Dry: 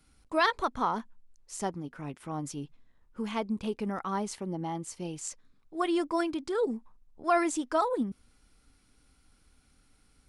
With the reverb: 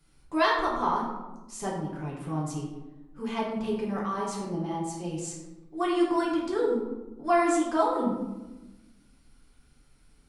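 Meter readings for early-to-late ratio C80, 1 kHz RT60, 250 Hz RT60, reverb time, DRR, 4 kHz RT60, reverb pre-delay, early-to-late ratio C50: 5.5 dB, 1.0 s, 1.5 s, 1.1 s, -4.5 dB, 0.60 s, 3 ms, 3.0 dB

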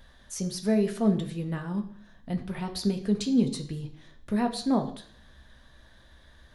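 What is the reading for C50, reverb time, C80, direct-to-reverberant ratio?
11.5 dB, 0.55 s, 14.5 dB, 5.0 dB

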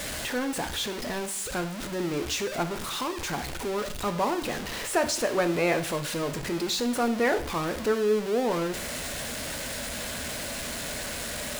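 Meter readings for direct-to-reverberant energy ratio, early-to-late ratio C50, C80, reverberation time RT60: 7.5 dB, 13.0 dB, 17.0 dB, 0.60 s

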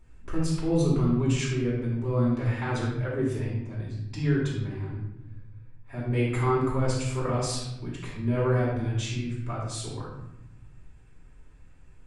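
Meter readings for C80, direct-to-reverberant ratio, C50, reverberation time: 4.0 dB, -8.5 dB, 0.5 dB, 0.90 s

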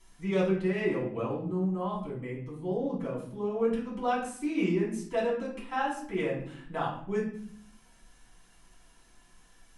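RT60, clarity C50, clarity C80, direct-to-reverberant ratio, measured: 0.60 s, 5.0 dB, 9.5 dB, -6.5 dB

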